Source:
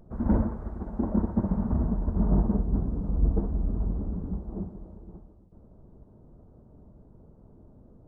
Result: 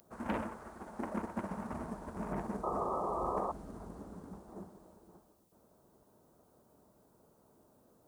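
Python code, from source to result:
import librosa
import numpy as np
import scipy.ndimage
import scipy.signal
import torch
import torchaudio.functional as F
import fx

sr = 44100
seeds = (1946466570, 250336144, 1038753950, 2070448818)

y = fx.tracing_dist(x, sr, depth_ms=0.13)
y = np.diff(y, prepend=0.0)
y = fx.spec_paint(y, sr, seeds[0], shape='noise', start_s=2.63, length_s=0.89, low_hz=330.0, high_hz=1300.0, level_db=-52.0)
y = y * librosa.db_to_amplitude(16.5)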